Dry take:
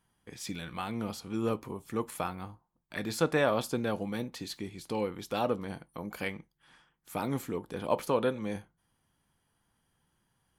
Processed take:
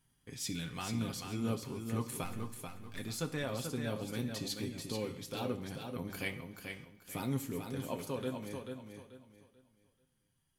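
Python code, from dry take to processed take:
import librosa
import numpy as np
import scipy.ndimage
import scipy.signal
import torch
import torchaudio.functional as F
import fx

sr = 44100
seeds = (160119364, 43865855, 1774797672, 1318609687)

p1 = fx.halfwave_gain(x, sr, db=-12.0, at=(2.23, 2.98), fade=0.02)
p2 = p1 + 0.48 * np.pad(p1, (int(7.5 * sr / 1000.0), 0))[:len(p1)]
p3 = fx.rider(p2, sr, range_db=4, speed_s=0.5)
p4 = fx.peak_eq(p3, sr, hz=850.0, db=-10.0, octaves=2.7)
p5 = p4 + fx.echo_feedback(p4, sr, ms=437, feedback_pct=28, wet_db=-6.0, dry=0)
p6 = fx.rev_plate(p5, sr, seeds[0], rt60_s=0.73, hf_ratio=1.0, predelay_ms=0, drr_db=11.0)
y = p6 * librosa.db_to_amplitude(-2.0)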